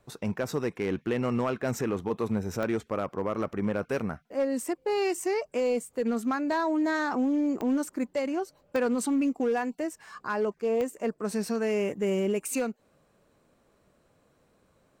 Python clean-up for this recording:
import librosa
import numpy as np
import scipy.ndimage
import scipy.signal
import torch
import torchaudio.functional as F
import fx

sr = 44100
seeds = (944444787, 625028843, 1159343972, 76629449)

y = fx.fix_declip(x, sr, threshold_db=-21.0)
y = fx.fix_declick_ar(y, sr, threshold=10.0)